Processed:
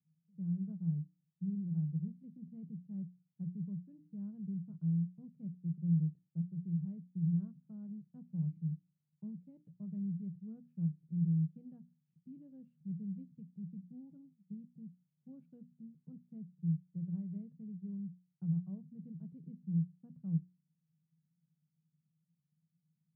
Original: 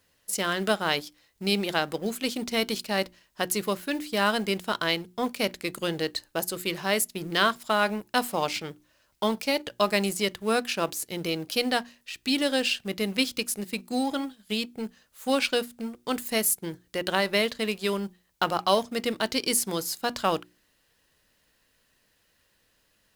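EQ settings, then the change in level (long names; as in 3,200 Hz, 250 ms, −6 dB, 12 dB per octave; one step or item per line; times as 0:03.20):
flat-topped band-pass 160 Hz, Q 6.2
+9.0 dB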